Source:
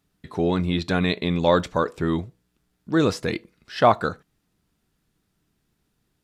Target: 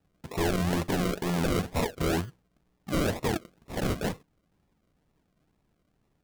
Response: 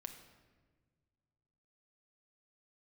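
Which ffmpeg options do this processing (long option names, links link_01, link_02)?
-af "acrusher=samples=40:mix=1:aa=0.000001:lfo=1:lforange=24:lforate=2.1,aeval=exprs='0.0891*(abs(mod(val(0)/0.0891+3,4)-2)-1)':channel_layout=same"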